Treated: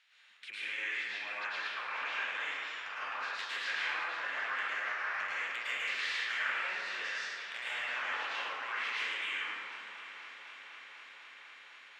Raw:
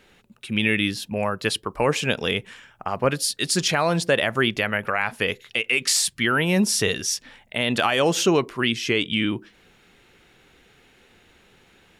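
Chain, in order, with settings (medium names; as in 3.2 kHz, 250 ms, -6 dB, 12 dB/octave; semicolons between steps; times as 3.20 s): spectral peaks clipped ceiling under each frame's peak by 15 dB; low-pass that closes with the level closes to 1.9 kHz, closed at -21.5 dBFS; de-esser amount 100%; spectral noise reduction 8 dB; in parallel at +3 dB: peak limiter -18.5 dBFS, peak gain reduction 10.5 dB; on the sum: compression 4:1, threshold -24 dBFS, peak gain reduction 11 dB; ladder band-pass 2.6 kHz, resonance 20%; saturation -31 dBFS, distortion -20 dB; multi-head delay 250 ms, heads second and third, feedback 74%, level -16 dB; plate-style reverb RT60 2.2 s, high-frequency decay 0.45×, pre-delay 95 ms, DRR -10 dB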